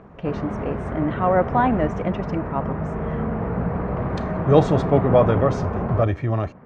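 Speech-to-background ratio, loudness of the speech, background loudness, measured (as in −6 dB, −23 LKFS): 4.5 dB, −22.0 LKFS, −26.5 LKFS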